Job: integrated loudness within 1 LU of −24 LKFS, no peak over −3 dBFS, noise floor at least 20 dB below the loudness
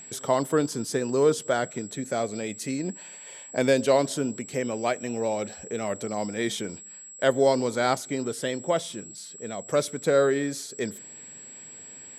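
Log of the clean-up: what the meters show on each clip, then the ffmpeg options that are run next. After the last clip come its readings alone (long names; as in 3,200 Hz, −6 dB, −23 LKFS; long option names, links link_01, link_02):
interfering tone 7,700 Hz; level of the tone −42 dBFS; integrated loudness −27.0 LKFS; sample peak −8.5 dBFS; target loudness −24.0 LKFS
→ -af "bandreject=frequency=7700:width=30"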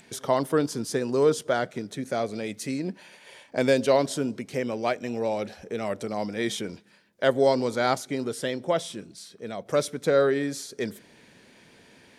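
interfering tone none found; integrated loudness −27.0 LKFS; sample peak −8.0 dBFS; target loudness −24.0 LKFS
→ -af "volume=3dB"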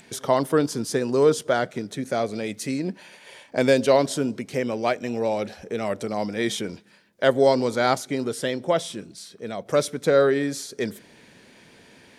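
integrated loudness −24.0 LKFS; sample peak −5.0 dBFS; background noise floor −53 dBFS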